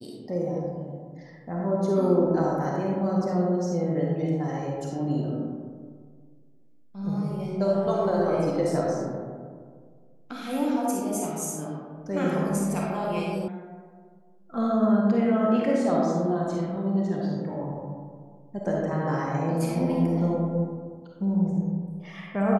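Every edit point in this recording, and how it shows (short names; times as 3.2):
13.48 sound cut off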